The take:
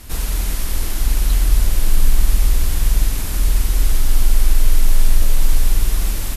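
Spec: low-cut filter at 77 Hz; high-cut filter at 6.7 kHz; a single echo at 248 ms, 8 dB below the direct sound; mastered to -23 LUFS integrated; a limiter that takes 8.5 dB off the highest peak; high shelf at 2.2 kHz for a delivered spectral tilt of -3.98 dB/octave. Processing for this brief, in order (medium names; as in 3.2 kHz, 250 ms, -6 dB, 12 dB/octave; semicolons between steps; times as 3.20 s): high-pass 77 Hz; low-pass 6.7 kHz; treble shelf 2.2 kHz -3.5 dB; peak limiter -22.5 dBFS; delay 248 ms -8 dB; trim +9.5 dB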